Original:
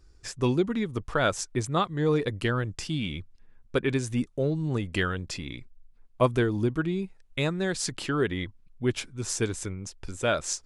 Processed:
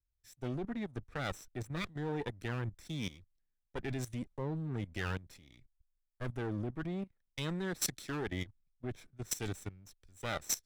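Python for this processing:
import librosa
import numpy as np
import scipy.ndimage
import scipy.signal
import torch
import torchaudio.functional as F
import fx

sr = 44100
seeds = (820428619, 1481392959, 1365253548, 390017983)

y = fx.lower_of_two(x, sr, delay_ms=0.52)
y = fx.level_steps(y, sr, step_db=16)
y = fx.band_widen(y, sr, depth_pct=70)
y = y * 10.0 ** (-4.5 / 20.0)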